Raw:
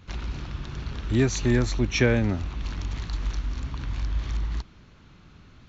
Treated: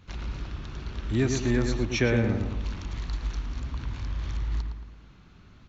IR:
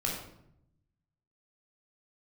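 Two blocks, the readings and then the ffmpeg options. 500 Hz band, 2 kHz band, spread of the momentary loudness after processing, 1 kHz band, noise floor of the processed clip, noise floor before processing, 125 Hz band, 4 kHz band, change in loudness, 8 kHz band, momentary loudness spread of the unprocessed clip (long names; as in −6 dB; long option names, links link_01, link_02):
−2.0 dB, −2.5 dB, 13 LU, −2.0 dB, −53 dBFS, −52 dBFS, −2.0 dB, −3.0 dB, −2.0 dB, can't be measured, 13 LU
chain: -filter_complex "[0:a]asplit=2[link_01][link_02];[link_02]adelay=112,lowpass=frequency=2200:poles=1,volume=-4.5dB,asplit=2[link_03][link_04];[link_04]adelay=112,lowpass=frequency=2200:poles=1,volume=0.49,asplit=2[link_05][link_06];[link_06]adelay=112,lowpass=frequency=2200:poles=1,volume=0.49,asplit=2[link_07][link_08];[link_08]adelay=112,lowpass=frequency=2200:poles=1,volume=0.49,asplit=2[link_09][link_10];[link_10]adelay=112,lowpass=frequency=2200:poles=1,volume=0.49,asplit=2[link_11][link_12];[link_12]adelay=112,lowpass=frequency=2200:poles=1,volume=0.49[link_13];[link_01][link_03][link_05][link_07][link_09][link_11][link_13]amix=inputs=7:normalize=0,volume=-3.5dB"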